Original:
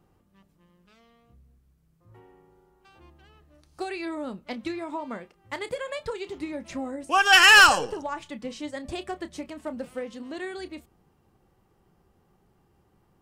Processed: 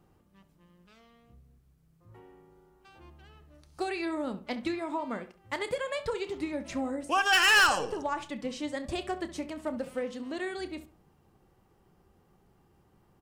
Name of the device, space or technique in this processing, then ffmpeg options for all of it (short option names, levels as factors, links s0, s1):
clipper into limiter: -filter_complex "[0:a]asettb=1/sr,asplit=3[s0][s1][s2];[s0]atrim=end=4.664[s3];[s1]atrim=start=4.66:end=5.17,asetpts=PTS-STARTPTS,afade=t=in:d=0.004:c=qsin,afade=t=out:st=0.506:d=0.004:c=qsin,bandreject=f=5800:w=13[s4];[s2]atrim=start=5.166[s5];[s3][s4]acrossfade=d=0.004:c1=hsin:c2=qsin[s6];[s6][s5]acrossfade=d=0.004:c1=qsin:c2=hsin,asoftclip=type=hard:threshold=0.299,alimiter=limit=0.133:level=0:latency=1:release=302,asplit=2[s7][s8];[s8]adelay=68,lowpass=f=2600:p=1,volume=0.224,asplit=2[s9][s10];[s10]adelay=68,lowpass=f=2600:p=1,volume=0.3,asplit=2[s11][s12];[s12]adelay=68,lowpass=f=2600:p=1,volume=0.3[s13];[s7][s9][s11][s13]amix=inputs=4:normalize=0"